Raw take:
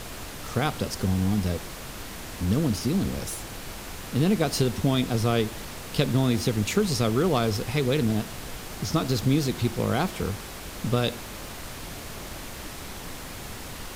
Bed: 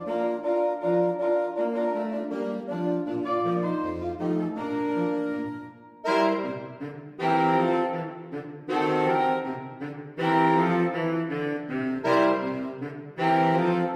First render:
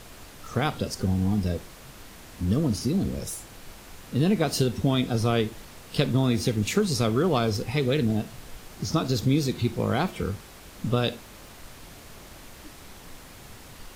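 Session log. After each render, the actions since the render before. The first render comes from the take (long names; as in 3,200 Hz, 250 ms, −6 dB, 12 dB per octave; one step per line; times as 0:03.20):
noise reduction from a noise print 8 dB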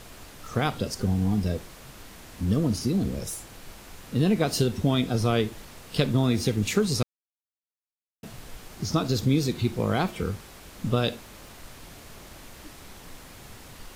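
0:07.03–0:08.23: silence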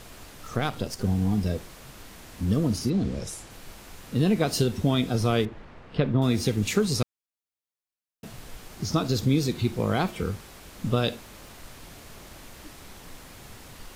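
0:00.56–0:01.04: gain on one half-wave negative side −7 dB
0:02.89–0:03.49: low-pass filter 4,800 Hz → 11,000 Hz
0:05.45–0:06.22: low-pass filter 2,000 Hz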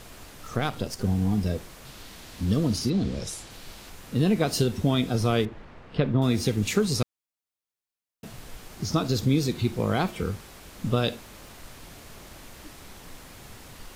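0:01.85–0:03.90: parametric band 4,000 Hz +5.5 dB 1.1 octaves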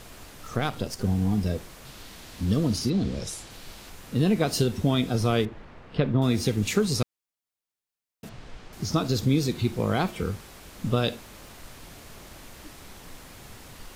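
0:08.29–0:08.73: high-frequency loss of the air 120 metres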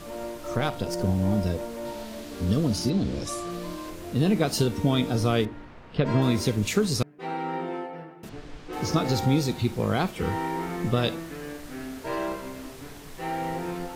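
mix in bed −9 dB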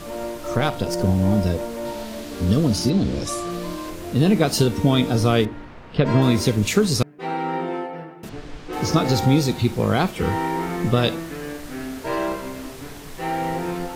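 level +5.5 dB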